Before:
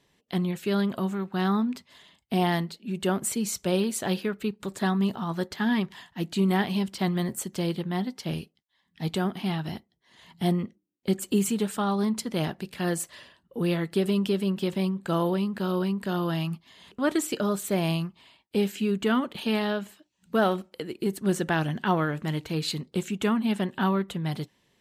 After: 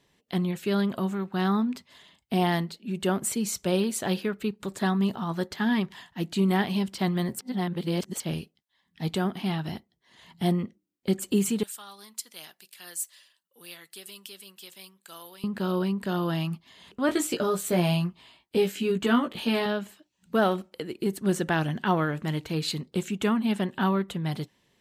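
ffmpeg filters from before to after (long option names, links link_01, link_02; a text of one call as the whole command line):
ffmpeg -i in.wav -filter_complex "[0:a]asettb=1/sr,asplit=3[link_01][link_02][link_03];[link_01]atrim=end=11.634[link_04];[link_02]atrim=start=11.63:end=15.44,asetpts=PTS-STARTPTS,afade=type=in:duration=0.004:curve=qsin,afade=type=out:start_time=3.806:duration=0.004:curve=qsin,aderivative[link_05];[link_03]atrim=start=15.436[link_06];[link_04][link_05]acrossfade=duration=0.004:curve1=hsin:curve2=qsin[link_07];[link_07][link_06]acrossfade=duration=0.004:curve1=qsin:curve2=hsin,asettb=1/sr,asplit=3[link_08][link_09][link_10];[link_08]atrim=end=17.074[link_11];[link_09]atrim=start=17.07:end=19.66,asetpts=PTS-STARTPTS,afade=type=in:duration=0.004:curve=qsin,afade=type=out:start_time=2.586:duration=0.004:curve=qsin,asplit=2[link_12][link_13];[link_13]adelay=17,volume=-3.5dB[link_14];[link_12][link_14]amix=inputs=2:normalize=0,atrim=end_sample=114219[link_15];[link_10]atrim=start=19.656[link_16];[link_11][link_15]acrossfade=duration=0.004:curve1=hsin:curve2=qsin[link_17];[link_17][link_16]acrossfade=duration=0.004:curve1=qsin:curve2=hsin,asplit=3[link_18][link_19][link_20];[link_18]atrim=end=7.392[link_21];[link_19]atrim=start=7.388:end=8.202,asetpts=PTS-STARTPTS,areverse[link_22];[link_20]atrim=start=8.198[link_23];[link_21][link_22]acrossfade=duration=0.004:curve1=hsin:curve2=hsin[link_24];[link_24][link_23]acrossfade=duration=0.004:curve1=hsin:curve2=hsin" out.wav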